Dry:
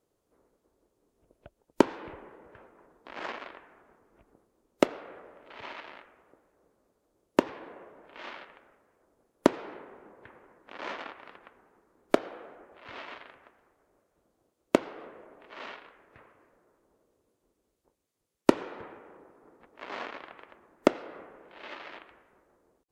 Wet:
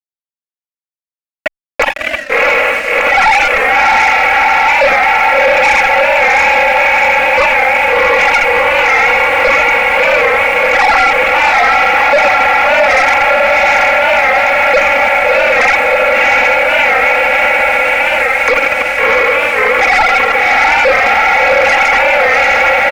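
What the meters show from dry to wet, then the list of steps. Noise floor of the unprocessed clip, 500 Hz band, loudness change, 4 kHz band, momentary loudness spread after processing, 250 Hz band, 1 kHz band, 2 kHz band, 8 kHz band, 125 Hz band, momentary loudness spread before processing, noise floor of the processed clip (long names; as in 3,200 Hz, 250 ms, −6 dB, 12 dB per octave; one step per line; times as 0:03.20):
−78 dBFS, +23.0 dB, +24.0 dB, +28.5 dB, 2 LU, +5.5 dB, +31.0 dB, +37.5 dB, +24.5 dB, can't be measured, 22 LU, below −85 dBFS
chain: three sine waves on the formant tracks
automatic gain control gain up to 14 dB
fuzz pedal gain 30 dB, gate −31 dBFS
harmonic generator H 7 −31 dB, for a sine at −11 dBFS
on a send: feedback delay with all-pass diffusion 684 ms, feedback 73%, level −7 dB
on the sum: soft clipping −25 dBFS, distortion −5 dB
low-pass with resonance 2,300 Hz, resonance Q 6.3
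dynamic equaliser 790 Hz, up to +7 dB, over −41 dBFS, Q 0.9
leveller curve on the samples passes 2
comb filter 3.6 ms, depth 81%
boost into a limiter +12 dB
wow of a warped record 45 rpm, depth 100 cents
level −1 dB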